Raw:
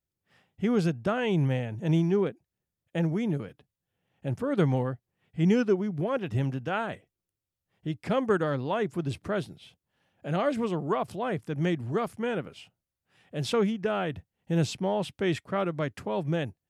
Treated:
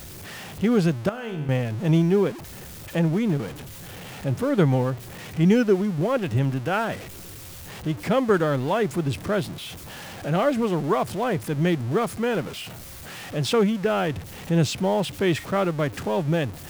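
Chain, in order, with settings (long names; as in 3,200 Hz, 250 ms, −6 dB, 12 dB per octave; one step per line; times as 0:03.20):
converter with a step at zero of −37 dBFS
0:01.09–0:01.49: tuned comb filter 76 Hz, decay 1.2 s, harmonics all, mix 80%
level +4.5 dB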